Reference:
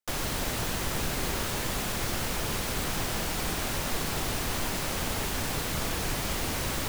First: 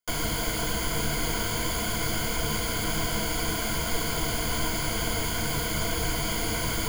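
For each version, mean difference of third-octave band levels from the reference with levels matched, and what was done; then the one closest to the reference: 2.5 dB: rippled EQ curve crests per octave 1.8, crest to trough 14 dB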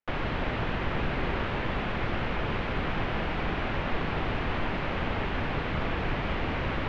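11.5 dB: low-pass 2.8 kHz 24 dB/octave; trim +2.5 dB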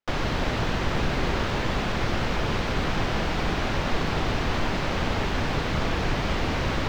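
6.5 dB: distance through air 210 m; trim +7 dB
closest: first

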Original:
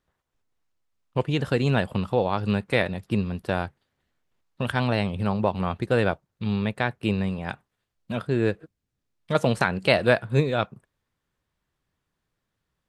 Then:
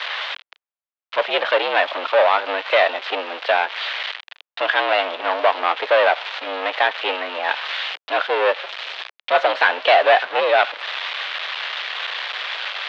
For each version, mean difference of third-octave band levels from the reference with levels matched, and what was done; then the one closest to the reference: 14.0 dB: zero-crossing glitches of -13 dBFS; waveshaping leveller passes 5; mistuned SSB +72 Hz 460–3500 Hz; trim -1.5 dB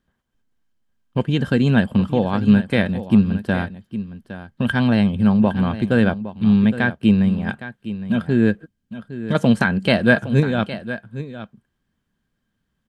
4.5 dB: bass shelf 100 Hz +7 dB; small resonant body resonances 220/1600/3100 Hz, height 13 dB, ringing for 45 ms; on a send: delay 812 ms -13 dB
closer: second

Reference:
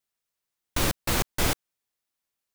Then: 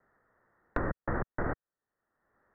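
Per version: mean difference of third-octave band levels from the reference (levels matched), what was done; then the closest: 17.0 dB: level held to a coarse grid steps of 9 dB; vibrato 1.8 Hz 25 cents; rippled Chebyshev low-pass 1.9 kHz, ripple 3 dB; three bands compressed up and down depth 100%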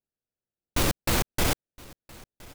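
1.0 dB: local Wiener filter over 41 samples; waveshaping leveller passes 1; peak limiter -20 dBFS, peak gain reduction 7.5 dB; on a send: delay 1017 ms -23 dB; on the sum: trim +4.5 dB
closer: second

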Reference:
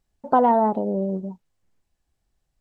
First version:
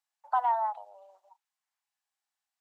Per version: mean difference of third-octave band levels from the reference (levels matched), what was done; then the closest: 9.5 dB: steep high-pass 760 Hz 48 dB/octave; trim -6 dB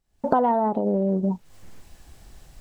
3.0 dB: recorder AGC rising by 65 dB/s; trim -3.5 dB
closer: second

